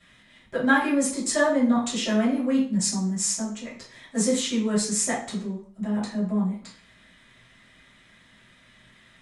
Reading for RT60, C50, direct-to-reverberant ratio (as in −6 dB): 0.50 s, 5.5 dB, −10.5 dB